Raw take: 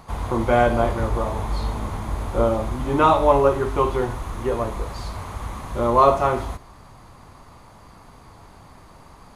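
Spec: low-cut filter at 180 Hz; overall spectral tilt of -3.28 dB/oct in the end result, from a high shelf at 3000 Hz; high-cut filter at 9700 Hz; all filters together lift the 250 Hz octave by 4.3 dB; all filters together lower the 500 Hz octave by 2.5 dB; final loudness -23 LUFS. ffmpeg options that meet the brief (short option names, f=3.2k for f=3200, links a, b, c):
-af "highpass=180,lowpass=9.7k,equalizer=f=250:t=o:g=8,equalizer=f=500:t=o:g=-5,highshelf=f=3k:g=-5,volume=-0.5dB"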